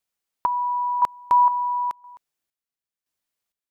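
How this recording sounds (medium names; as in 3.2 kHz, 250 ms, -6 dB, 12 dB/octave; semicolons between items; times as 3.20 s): chopped level 0.98 Hz, depth 65%, duty 45%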